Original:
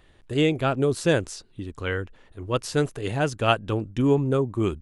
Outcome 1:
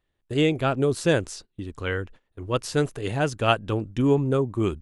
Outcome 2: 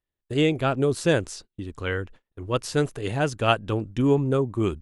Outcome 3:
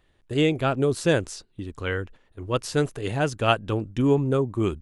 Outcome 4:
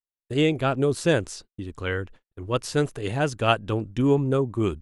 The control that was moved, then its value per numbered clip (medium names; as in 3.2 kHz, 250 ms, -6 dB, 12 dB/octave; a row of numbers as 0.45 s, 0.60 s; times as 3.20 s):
gate, range: -20 dB, -32 dB, -8 dB, -53 dB